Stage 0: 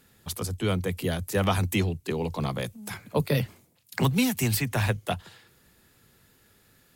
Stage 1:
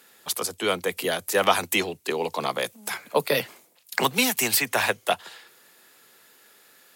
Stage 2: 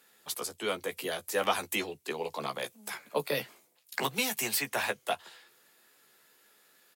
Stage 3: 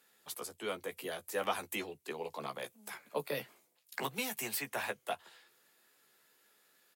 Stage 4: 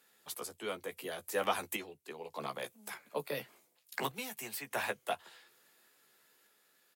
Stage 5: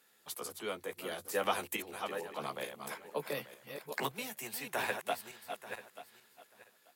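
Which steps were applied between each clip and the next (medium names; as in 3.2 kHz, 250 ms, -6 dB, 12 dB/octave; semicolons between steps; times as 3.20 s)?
high-pass 470 Hz 12 dB/octave; trim +7.5 dB
doubling 14 ms -7 dB; trim -9 dB
dynamic bell 5 kHz, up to -4 dB, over -50 dBFS, Q 0.77; trim -5.5 dB
random-step tremolo 1.7 Hz; trim +2 dB
backward echo that repeats 443 ms, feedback 40%, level -7 dB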